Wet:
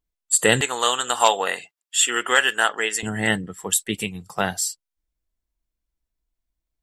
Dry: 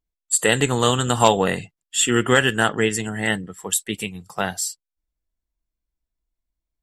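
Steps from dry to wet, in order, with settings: 0.61–3.03 s: high-pass 690 Hz 12 dB/octave; trim +1 dB

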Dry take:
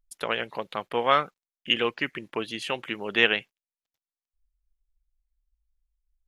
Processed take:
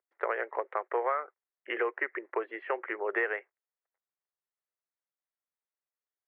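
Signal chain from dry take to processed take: saturation -7 dBFS, distortion -22 dB; Chebyshev band-pass 370–2000 Hz, order 4; compression 10:1, threshold -29 dBFS, peak gain reduction 12.5 dB; trim +3 dB

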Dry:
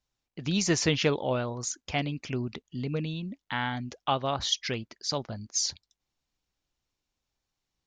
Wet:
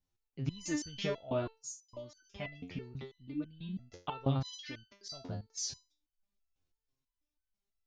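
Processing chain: bass shelf 380 Hz +11.5 dB; 1.47–3.79 s: bands offset in time highs, lows 460 ms, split 4.8 kHz; resonator arpeggio 6.1 Hz 89–1500 Hz; trim +1.5 dB

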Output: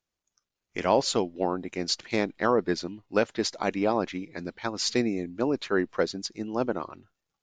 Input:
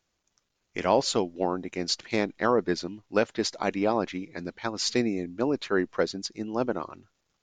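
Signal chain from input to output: spectral noise reduction 10 dB

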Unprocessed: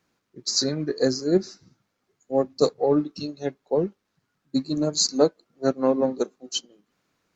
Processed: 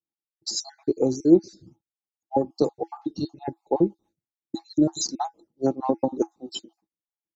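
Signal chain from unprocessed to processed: random holes in the spectrogram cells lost 50%; expander -52 dBFS; FFT filter 110 Hz 0 dB, 540 Hz -5 dB, 890 Hz -3 dB, 1.4 kHz -16 dB, 2.9 kHz -12 dB, 6.7 kHz -7 dB; compression, threshold -25 dBFS, peak gain reduction 8 dB; small resonant body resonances 330/830/3700 Hz, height 13 dB, ringing for 90 ms; trim +6 dB

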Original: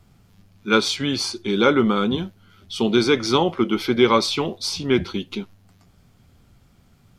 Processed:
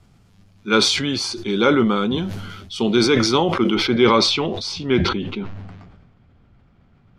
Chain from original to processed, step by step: low-pass 10 kHz 12 dB/octave, from 3.75 s 5.1 kHz, from 5.09 s 2.4 kHz; decay stretcher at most 39 dB/s

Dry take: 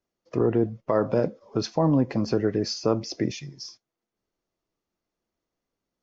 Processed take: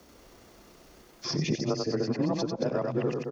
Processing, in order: reverse the whole clip; in parallel at +2.5 dB: compression, threshold -35 dBFS, peak gain reduction 17 dB; on the sum: granular stretch 0.55×, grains 65 ms; frequency shift +18 Hz; on a send: loudspeakers at several distances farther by 31 m -5 dB, 75 m -10 dB; on the sum: three bands compressed up and down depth 100%; trim -7 dB

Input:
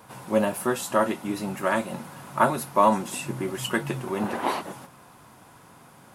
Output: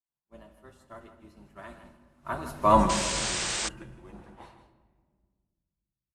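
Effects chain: octave divider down 2 oct, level -2 dB; Doppler pass-by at 2.78 s, 16 m/s, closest 1.7 m; treble shelf 6.9 kHz +10 dB; expander -47 dBFS; distance through air 72 m; delay 160 ms -11.5 dB; simulated room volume 1800 m³, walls mixed, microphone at 0.71 m; painted sound noise, 2.89–3.69 s, 310–8900 Hz -31 dBFS

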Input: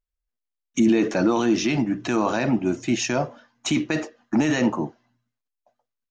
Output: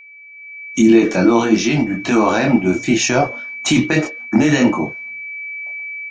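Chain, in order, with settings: chorus voices 4, 0.89 Hz, delay 24 ms, depth 3.6 ms; whistle 2.3 kHz -39 dBFS; level rider gain up to 14 dB

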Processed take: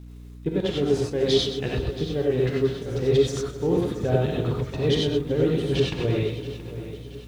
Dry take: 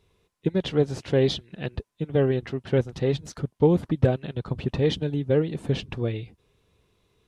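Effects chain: peaking EQ 410 Hz +4 dB 0.24 oct; reverse; compression, threshold -27 dBFS, peak gain reduction 14.5 dB; reverse; crackle 470 per s -54 dBFS; two-band feedback delay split 430 Hz, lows 231 ms, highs 125 ms, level -10 dB; trance gate "xxxx.xxxxxxx.x" 176 bpm; in parallel at -5 dB: crossover distortion -50.5 dBFS; on the sum: gated-style reverb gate 120 ms rising, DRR -2.5 dB; hum 60 Hz, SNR 17 dB; bit-crushed delay 676 ms, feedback 55%, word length 8-bit, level -14.5 dB

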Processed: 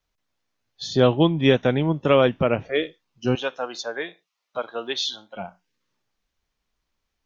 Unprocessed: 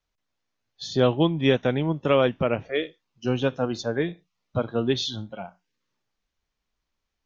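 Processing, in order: 3.35–5.36 s: high-pass 670 Hz 12 dB/octave; trim +3 dB

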